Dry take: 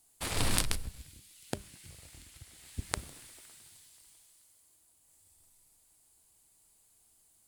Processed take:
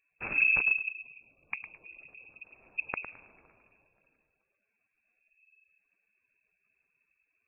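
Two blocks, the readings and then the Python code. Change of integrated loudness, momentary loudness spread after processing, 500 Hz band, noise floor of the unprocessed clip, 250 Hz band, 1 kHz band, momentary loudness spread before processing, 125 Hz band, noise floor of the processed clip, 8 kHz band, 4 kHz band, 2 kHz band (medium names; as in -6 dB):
+7.5 dB, 23 LU, -6.5 dB, -67 dBFS, -10.5 dB, -4.0 dB, 23 LU, -16.5 dB, -81 dBFS, under -40 dB, under -25 dB, +15.0 dB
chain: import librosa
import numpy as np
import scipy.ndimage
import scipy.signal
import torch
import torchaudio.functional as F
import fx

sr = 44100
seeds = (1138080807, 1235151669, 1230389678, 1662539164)

p1 = fx.spec_gate(x, sr, threshold_db=-20, keep='strong')
p2 = fx.peak_eq(p1, sr, hz=650.0, db=-11.0, octaves=1.1)
p3 = p2 + fx.echo_feedback(p2, sr, ms=107, feedback_pct=26, wet_db=-11.0, dry=0)
p4 = fx.freq_invert(p3, sr, carrier_hz=2600)
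y = F.gain(torch.from_numpy(p4), 2.5).numpy()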